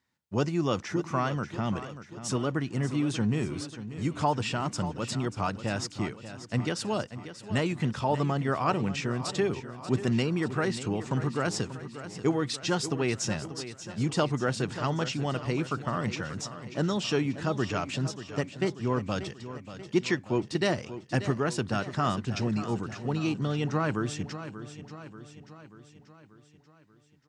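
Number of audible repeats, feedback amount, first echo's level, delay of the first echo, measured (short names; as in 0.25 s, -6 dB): 5, 56%, -12.5 dB, 0.586 s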